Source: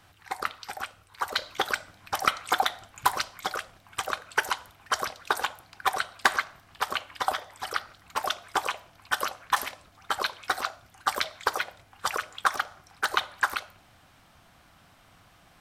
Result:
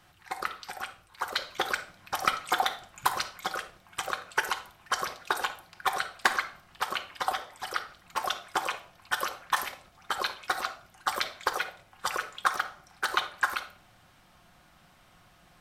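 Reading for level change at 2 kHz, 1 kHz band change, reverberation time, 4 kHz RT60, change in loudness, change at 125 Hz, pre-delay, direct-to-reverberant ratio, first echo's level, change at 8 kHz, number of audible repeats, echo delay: -1.5 dB, -2.0 dB, 0.40 s, 0.35 s, -2.0 dB, -2.5 dB, 5 ms, 6.5 dB, none, -2.0 dB, none, none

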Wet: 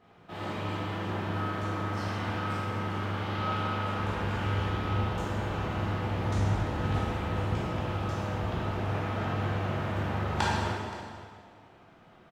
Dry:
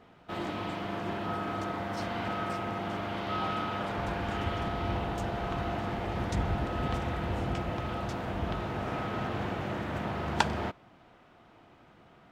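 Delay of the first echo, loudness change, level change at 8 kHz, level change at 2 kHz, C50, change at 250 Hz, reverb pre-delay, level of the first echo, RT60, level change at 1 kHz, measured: 0.524 s, +2.0 dB, +1.5 dB, +1.5 dB, -2.0 dB, +0.5 dB, 6 ms, -17.5 dB, 1.9 s, +0.5 dB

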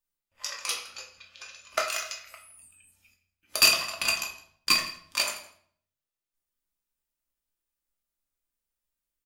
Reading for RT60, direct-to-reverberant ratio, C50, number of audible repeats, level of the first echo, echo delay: 0.60 s, 0.0 dB, 8.5 dB, 1, -20.5 dB, 0.163 s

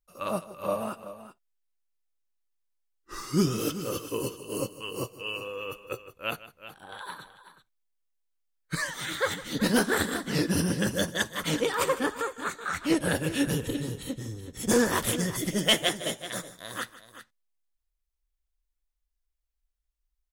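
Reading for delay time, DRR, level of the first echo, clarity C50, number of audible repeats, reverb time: 0.156 s, none, -17.0 dB, none, 2, none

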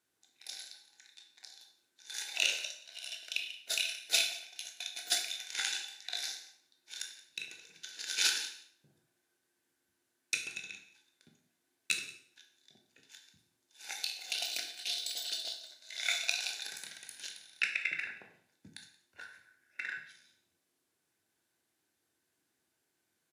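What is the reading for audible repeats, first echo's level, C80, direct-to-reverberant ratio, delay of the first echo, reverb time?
1, -21.5 dB, 11.0 dB, 3.0 dB, 0.178 s, 0.60 s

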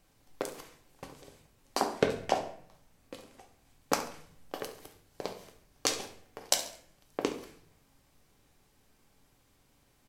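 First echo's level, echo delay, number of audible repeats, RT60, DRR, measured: -14.5 dB, 69 ms, 1, 0.60 s, 4.5 dB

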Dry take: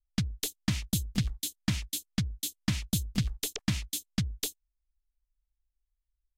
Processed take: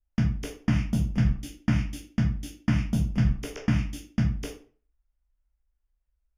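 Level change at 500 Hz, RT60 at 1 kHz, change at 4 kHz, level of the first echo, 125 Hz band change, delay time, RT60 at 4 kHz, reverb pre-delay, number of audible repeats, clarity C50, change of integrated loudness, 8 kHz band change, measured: +7.0 dB, 0.40 s, -8.0 dB, none, +7.5 dB, none, 0.30 s, 11 ms, none, 8.0 dB, +5.0 dB, -11.0 dB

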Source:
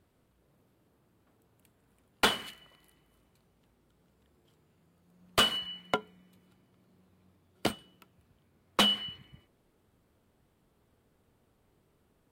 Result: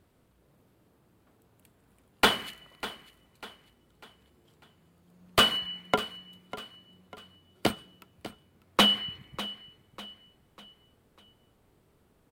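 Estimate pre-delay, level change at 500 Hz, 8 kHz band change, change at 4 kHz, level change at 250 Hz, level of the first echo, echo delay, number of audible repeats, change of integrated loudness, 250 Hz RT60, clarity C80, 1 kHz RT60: none, +4.0 dB, +1.0 dB, +3.5 dB, +4.0 dB, -15.0 dB, 0.597 s, 3, +2.5 dB, none, none, none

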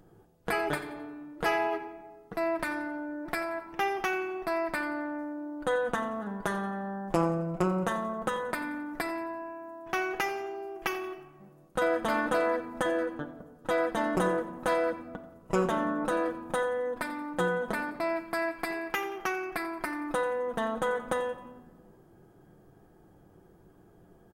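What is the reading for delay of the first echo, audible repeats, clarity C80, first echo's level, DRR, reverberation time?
88 ms, 2, 11.0 dB, -16.0 dB, 3.5 dB, 1.4 s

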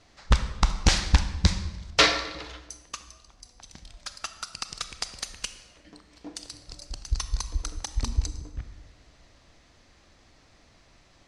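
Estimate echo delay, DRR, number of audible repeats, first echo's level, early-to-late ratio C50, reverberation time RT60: none, 10.0 dB, none, none, 11.0 dB, 1.2 s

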